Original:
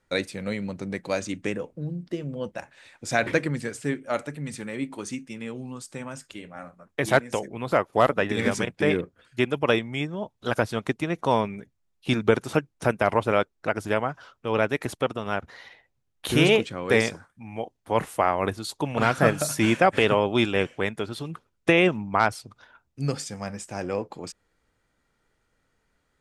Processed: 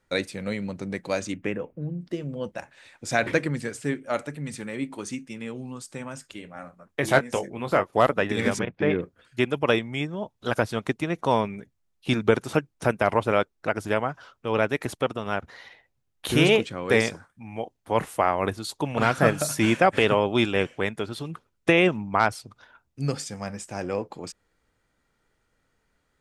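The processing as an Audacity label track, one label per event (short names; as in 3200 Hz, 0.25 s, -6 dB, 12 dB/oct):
1.340000	2.010000	band shelf 6100 Hz -13.5 dB
7.010000	7.900000	doubler 21 ms -8.5 dB
8.590000	9.010000	air absorption 280 m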